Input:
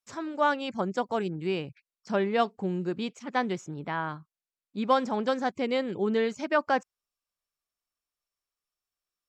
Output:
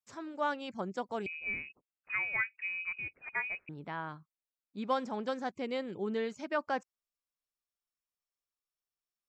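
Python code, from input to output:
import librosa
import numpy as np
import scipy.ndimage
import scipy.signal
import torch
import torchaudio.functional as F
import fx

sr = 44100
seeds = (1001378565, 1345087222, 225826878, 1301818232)

y = fx.freq_invert(x, sr, carrier_hz=2700, at=(1.26, 3.69))
y = F.gain(torch.from_numpy(y), -8.0).numpy()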